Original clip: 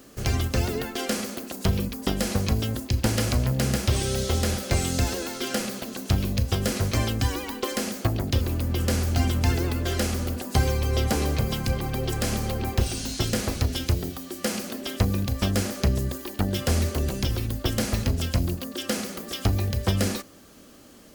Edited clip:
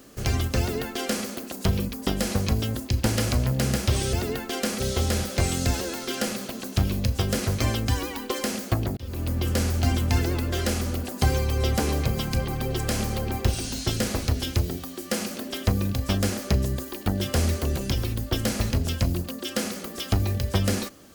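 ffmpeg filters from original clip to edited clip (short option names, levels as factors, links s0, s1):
-filter_complex "[0:a]asplit=4[s0][s1][s2][s3];[s0]atrim=end=4.132[s4];[s1]atrim=start=0.588:end=1.262[s5];[s2]atrim=start=4.128:end=8.3,asetpts=PTS-STARTPTS,afade=t=out:st=4.168:d=0.004:c=hsin[s6];[s3]atrim=start=8.3,asetpts=PTS-STARTPTS,afade=t=in:d=0.32[s7];[s4][s5]acrossfade=d=0.004:c1=hsin:c2=hsin[s8];[s6][s7]concat=n=2:v=0:a=1[s9];[s8][s9]acrossfade=d=0.004:c1=hsin:c2=hsin"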